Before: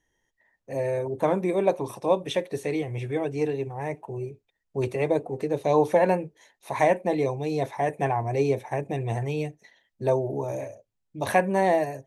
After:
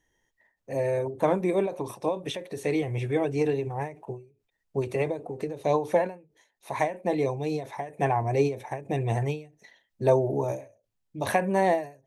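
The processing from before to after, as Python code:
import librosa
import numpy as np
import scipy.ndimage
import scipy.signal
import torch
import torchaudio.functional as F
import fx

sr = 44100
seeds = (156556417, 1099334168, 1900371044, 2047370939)

y = fx.rider(x, sr, range_db=3, speed_s=2.0)
y = fx.end_taper(y, sr, db_per_s=150.0)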